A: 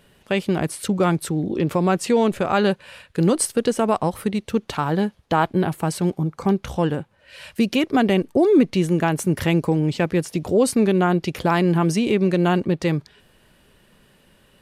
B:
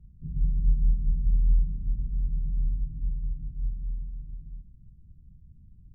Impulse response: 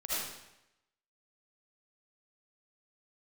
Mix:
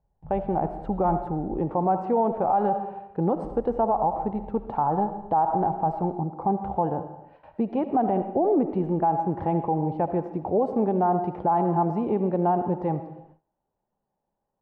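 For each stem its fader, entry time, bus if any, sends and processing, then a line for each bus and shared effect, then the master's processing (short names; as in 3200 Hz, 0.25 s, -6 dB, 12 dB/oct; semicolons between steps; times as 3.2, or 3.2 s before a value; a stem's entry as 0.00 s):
-8.5 dB, 0.00 s, send -13.5 dB, dry
-3.0 dB, 0.00 s, muted 1.52–3.44, send -9.5 dB, compressor, threshold -31 dBFS, peak gain reduction 14 dB; auto duck -6 dB, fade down 0.20 s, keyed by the first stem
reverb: on, RT60 0.90 s, pre-delay 35 ms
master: synth low-pass 820 Hz, resonance Q 7.4; gate with hold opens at -41 dBFS; limiter -14.5 dBFS, peak gain reduction 9.5 dB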